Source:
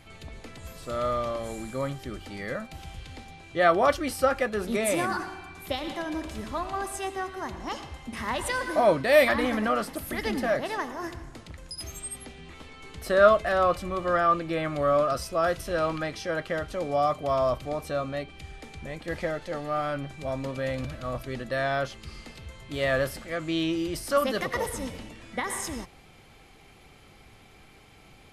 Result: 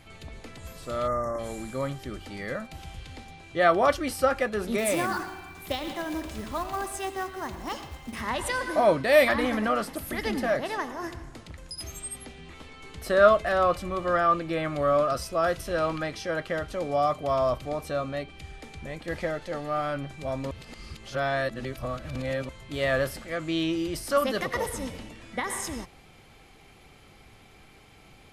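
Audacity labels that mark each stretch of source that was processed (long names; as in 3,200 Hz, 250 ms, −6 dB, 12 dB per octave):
1.070000	1.390000	time-frequency box erased 2,100–5,300 Hz
4.780000	8.210000	floating-point word with a short mantissa of 2 bits
20.510000	22.490000	reverse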